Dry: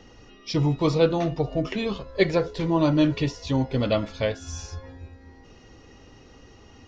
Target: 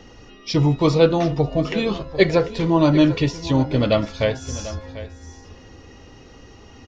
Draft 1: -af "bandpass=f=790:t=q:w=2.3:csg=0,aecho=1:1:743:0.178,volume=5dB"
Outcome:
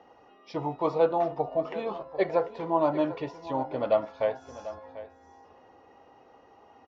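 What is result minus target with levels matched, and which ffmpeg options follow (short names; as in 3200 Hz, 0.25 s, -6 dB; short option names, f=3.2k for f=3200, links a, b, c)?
1000 Hz band +7.0 dB
-af "aecho=1:1:743:0.178,volume=5dB"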